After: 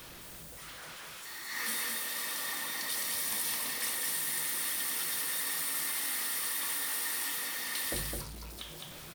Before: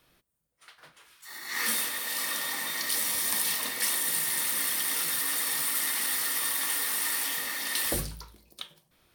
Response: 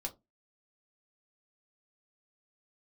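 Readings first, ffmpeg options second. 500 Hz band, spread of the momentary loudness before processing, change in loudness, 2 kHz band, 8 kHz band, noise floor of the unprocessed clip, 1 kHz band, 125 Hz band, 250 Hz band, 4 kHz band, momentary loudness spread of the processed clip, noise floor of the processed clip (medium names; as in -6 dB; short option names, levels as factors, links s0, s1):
-4.5 dB, 8 LU, -5.0 dB, -4.5 dB, -5.0 dB, -70 dBFS, -4.5 dB, -3.0 dB, -4.5 dB, -4.5 dB, 13 LU, -48 dBFS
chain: -af "aeval=exprs='val(0)+0.5*0.0188*sgn(val(0))':c=same,aecho=1:1:211:0.708,volume=0.376"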